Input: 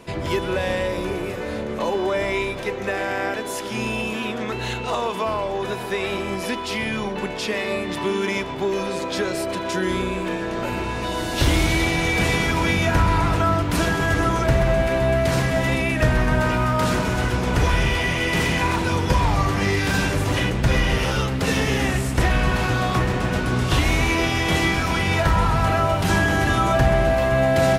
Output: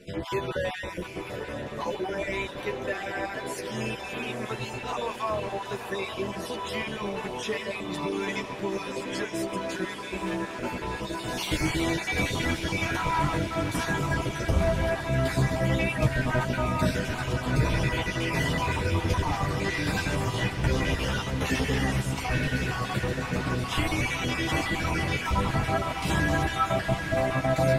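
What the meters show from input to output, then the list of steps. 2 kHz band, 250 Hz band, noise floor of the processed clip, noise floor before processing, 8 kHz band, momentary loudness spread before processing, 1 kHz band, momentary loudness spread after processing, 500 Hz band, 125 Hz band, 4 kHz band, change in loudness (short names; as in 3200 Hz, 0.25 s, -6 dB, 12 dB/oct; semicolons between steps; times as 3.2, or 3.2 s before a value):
-6.5 dB, -6.5 dB, -37 dBFS, -29 dBFS, -6.5 dB, 7 LU, -7.0 dB, 7 LU, -7.5 dB, -6.5 dB, -6.5 dB, -7.0 dB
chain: random spectral dropouts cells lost 33%; chorus voices 4, 0.23 Hz, delay 11 ms, depth 4.8 ms; diffused feedback echo 0.911 s, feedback 70%, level -10 dB; gain -2.5 dB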